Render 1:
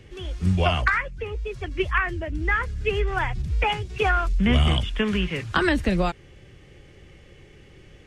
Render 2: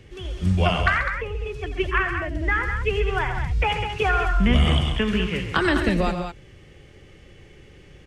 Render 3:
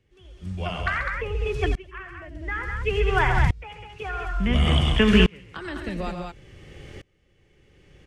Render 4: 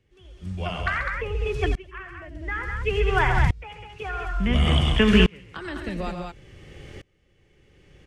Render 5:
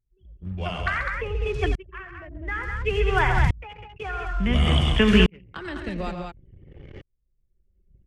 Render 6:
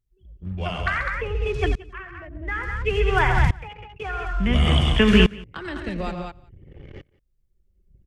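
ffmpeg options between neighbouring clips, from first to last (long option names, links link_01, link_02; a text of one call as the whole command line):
ffmpeg -i in.wav -af "aecho=1:1:87.46|134.1|201.2:0.251|0.316|0.398" out.wav
ffmpeg -i in.wav -af "aeval=exprs='val(0)*pow(10,-29*if(lt(mod(-0.57*n/s,1),2*abs(-0.57)/1000),1-mod(-0.57*n/s,1)/(2*abs(-0.57)/1000),(mod(-0.57*n/s,1)-2*abs(-0.57)/1000)/(1-2*abs(-0.57)/1000))/20)':channel_layout=same,volume=8.5dB" out.wav
ffmpeg -i in.wav -af anull out.wav
ffmpeg -i in.wav -af "anlmdn=0.158" out.wav
ffmpeg -i in.wav -af "aecho=1:1:178:0.0668,volume=1.5dB" out.wav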